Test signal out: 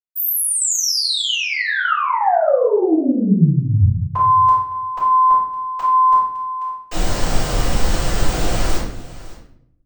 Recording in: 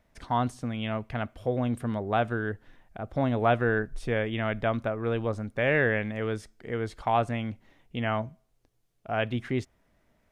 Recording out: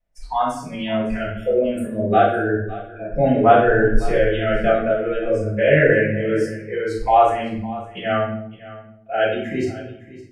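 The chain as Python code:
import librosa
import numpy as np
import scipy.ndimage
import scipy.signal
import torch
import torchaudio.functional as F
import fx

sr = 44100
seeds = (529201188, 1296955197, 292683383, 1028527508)

p1 = fx.noise_reduce_blind(x, sr, reduce_db=23)
p2 = fx.dynamic_eq(p1, sr, hz=2500.0, q=1.7, threshold_db=-46.0, ratio=4.0, max_db=-5)
p3 = p2 + fx.echo_single(p2, sr, ms=559, db=-17.5, dry=0)
p4 = fx.room_shoebox(p3, sr, seeds[0], volume_m3=130.0, walls='mixed', distance_m=5.1)
y = p4 * 10.0 ** (-4.5 / 20.0)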